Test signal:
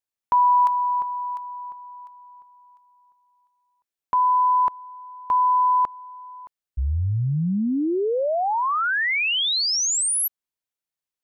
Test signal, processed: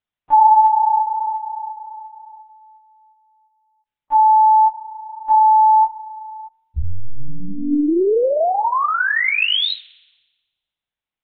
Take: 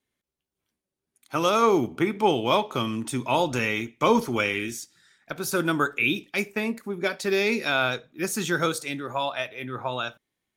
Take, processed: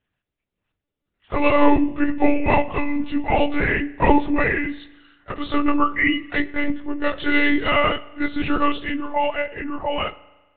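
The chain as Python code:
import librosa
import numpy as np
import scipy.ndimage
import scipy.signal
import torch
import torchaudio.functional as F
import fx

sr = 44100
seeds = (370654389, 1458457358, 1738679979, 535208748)

y = fx.partial_stretch(x, sr, pct=91)
y = fx.lpc_monotone(y, sr, seeds[0], pitch_hz=290.0, order=10)
y = fx.rev_spring(y, sr, rt60_s=1.2, pass_ms=(38,), chirp_ms=25, drr_db=19.0)
y = y * librosa.db_to_amplitude(7.5)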